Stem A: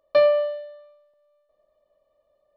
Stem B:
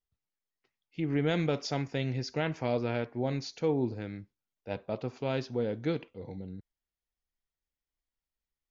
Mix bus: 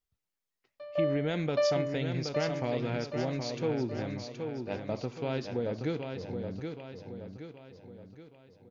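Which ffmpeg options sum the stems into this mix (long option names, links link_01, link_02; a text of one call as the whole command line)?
ffmpeg -i stem1.wav -i stem2.wav -filter_complex "[0:a]adelay=650,volume=-6dB,asplit=2[link_01][link_02];[link_02]volume=-4.5dB[link_03];[1:a]acompressor=threshold=-32dB:ratio=2,volume=1.5dB,asplit=3[link_04][link_05][link_06];[link_05]volume=-6dB[link_07];[link_06]apad=whole_len=141879[link_08];[link_01][link_08]sidechaingate=range=-23dB:threshold=-59dB:ratio=16:detection=peak[link_09];[link_03][link_07]amix=inputs=2:normalize=0,aecho=0:1:773|1546|2319|3092|3865|4638|5411:1|0.47|0.221|0.104|0.0488|0.0229|0.0108[link_10];[link_09][link_04][link_10]amix=inputs=3:normalize=0" out.wav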